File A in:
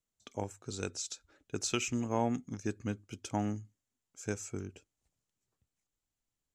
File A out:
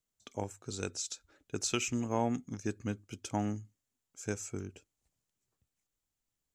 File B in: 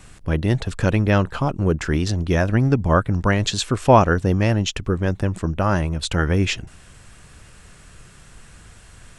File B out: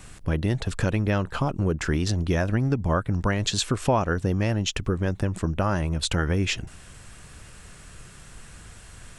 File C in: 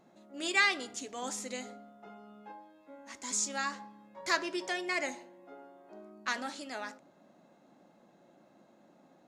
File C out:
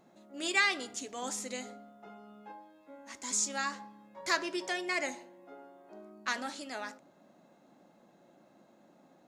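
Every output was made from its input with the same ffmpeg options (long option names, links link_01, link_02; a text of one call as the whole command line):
ffmpeg -i in.wav -af "highshelf=frequency=8600:gain=3.5,acompressor=threshold=-21dB:ratio=3" out.wav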